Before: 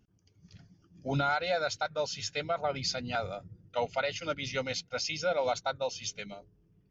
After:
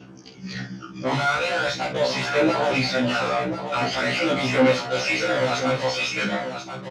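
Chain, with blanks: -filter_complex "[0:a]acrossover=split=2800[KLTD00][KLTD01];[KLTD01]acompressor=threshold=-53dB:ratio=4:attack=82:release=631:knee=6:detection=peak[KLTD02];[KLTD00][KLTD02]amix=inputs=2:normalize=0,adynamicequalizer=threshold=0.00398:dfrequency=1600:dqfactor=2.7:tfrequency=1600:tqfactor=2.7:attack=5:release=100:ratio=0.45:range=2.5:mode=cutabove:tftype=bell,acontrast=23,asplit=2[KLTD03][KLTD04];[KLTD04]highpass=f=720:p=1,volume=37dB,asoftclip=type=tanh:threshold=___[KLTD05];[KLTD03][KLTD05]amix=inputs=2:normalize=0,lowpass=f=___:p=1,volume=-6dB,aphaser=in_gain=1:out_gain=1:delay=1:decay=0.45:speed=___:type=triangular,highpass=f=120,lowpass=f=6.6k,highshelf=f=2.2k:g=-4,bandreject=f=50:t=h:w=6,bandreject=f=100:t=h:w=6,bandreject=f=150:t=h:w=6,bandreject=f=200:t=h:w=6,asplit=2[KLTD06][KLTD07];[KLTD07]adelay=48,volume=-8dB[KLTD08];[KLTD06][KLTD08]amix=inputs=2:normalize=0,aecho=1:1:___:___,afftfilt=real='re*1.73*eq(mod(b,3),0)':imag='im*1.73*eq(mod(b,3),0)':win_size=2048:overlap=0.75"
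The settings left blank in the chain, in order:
-13dB, 3.9k, 0.43, 1037, 0.376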